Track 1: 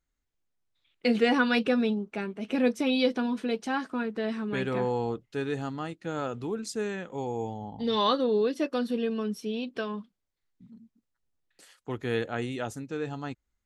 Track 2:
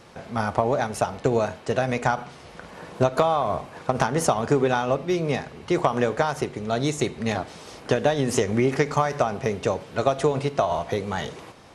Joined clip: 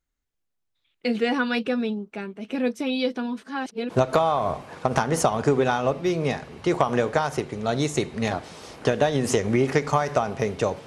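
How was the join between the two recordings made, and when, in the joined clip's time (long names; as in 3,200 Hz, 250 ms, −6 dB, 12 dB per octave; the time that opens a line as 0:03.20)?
track 1
0:03.43–0:03.90: reverse
0:03.90: continue with track 2 from 0:02.94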